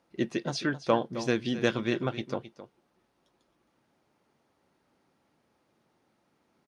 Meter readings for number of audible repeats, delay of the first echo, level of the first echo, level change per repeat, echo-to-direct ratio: 1, 0.265 s, -13.5 dB, no steady repeat, -13.5 dB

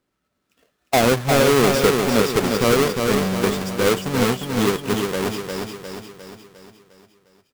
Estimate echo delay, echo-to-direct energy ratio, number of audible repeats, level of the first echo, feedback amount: 0.354 s, -3.0 dB, 6, -4.5 dB, 51%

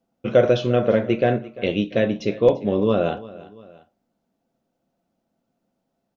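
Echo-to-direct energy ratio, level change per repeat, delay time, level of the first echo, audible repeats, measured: -18.0 dB, -6.5 dB, 0.344 s, -19.0 dB, 2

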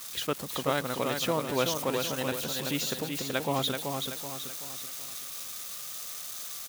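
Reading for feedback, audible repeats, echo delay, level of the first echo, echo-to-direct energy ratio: 42%, 4, 0.38 s, -5.0 dB, -4.0 dB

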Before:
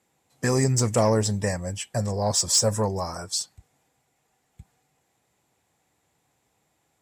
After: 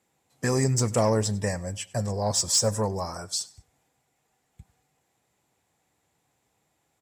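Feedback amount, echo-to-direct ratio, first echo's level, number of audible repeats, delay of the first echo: 31%, -21.5 dB, -22.0 dB, 2, 98 ms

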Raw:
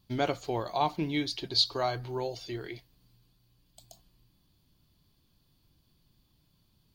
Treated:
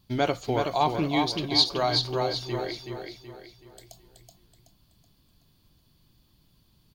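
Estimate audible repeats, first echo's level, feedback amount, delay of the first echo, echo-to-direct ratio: 4, -5.0 dB, 41%, 0.376 s, -4.0 dB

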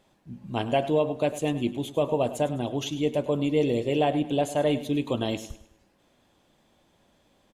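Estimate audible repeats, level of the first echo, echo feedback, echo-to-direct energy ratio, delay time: 3, -14.5 dB, 38%, -14.0 dB, 0.103 s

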